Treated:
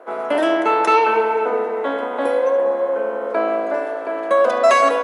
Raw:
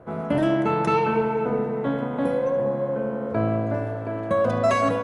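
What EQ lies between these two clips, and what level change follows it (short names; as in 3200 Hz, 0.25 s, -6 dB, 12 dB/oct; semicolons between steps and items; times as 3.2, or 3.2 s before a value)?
Bessel high-pass 520 Hz, order 6; +9.0 dB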